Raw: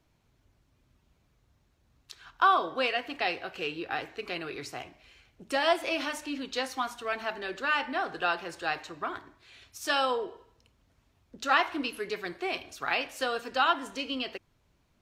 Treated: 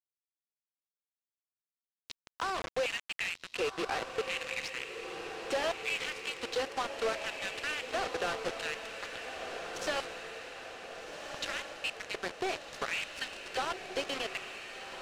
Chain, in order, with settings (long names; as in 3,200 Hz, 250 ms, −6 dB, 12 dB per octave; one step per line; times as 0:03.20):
downward compressor 16 to 1, threshold −38 dBFS, peak gain reduction 21 dB
auto-filter high-pass square 0.7 Hz 470–2,200 Hz
log-companded quantiser 2 bits
high-frequency loss of the air 78 metres
feedback delay with all-pass diffusion 1,546 ms, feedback 59%, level −6.5 dB
level −2.5 dB